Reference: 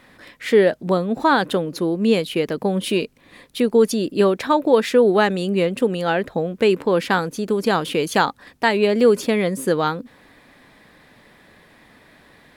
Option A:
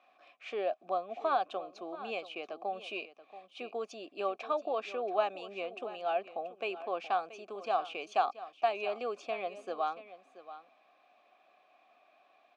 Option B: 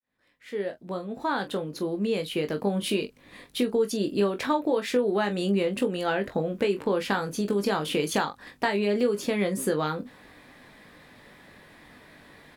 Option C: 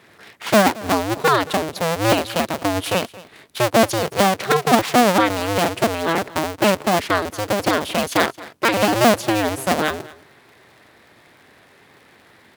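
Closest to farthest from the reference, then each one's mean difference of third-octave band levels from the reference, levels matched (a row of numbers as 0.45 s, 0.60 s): B, A, C; 4.0 dB, 8.0 dB, 11.5 dB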